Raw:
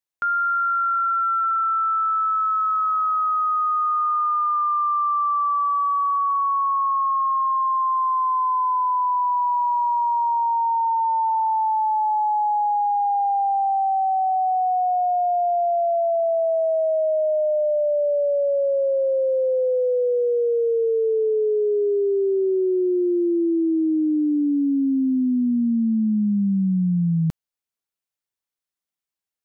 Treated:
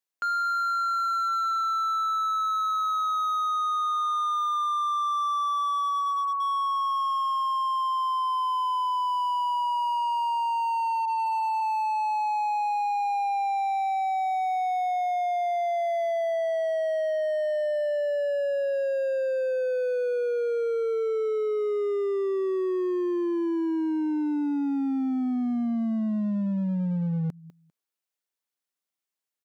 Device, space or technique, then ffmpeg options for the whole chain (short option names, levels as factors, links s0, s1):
limiter into clipper: -filter_complex "[0:a]asplit=3[s0][s1][s2];[s0]afade=t=out:st=11.05:d=0.02[s3];[s1]lowpass=1000,afade=t=in:st=11.05:d=0.02,afade=t=out:st=11.6:d=0.02[s4];[s2]afade=t=in:st=11.6:d=0.02[s5];[s3][s4][s5]amix=inputs=3:normalize=0,highpass=190,asplit=3[s6][s7][s8];[s6]afade=t=out:st=5.62:d=0.02[s9];[s7]aecho=1:1:4.1:0.7,afade=t=in:st=5.62:d=0.02,afade=t=out:st=6.4:d=0.02[s10];[s8]afade=t=in:st=6.4:d=0.02[s11];[s9][s10][s11]amix=inputs=3:normalize=0,aecho=1:1:199|398:0.0891|0.0143,alimiter=limit=0.0794:level=0:latency=1:release=177,asoftclip=type=hard:threshold=0.0596"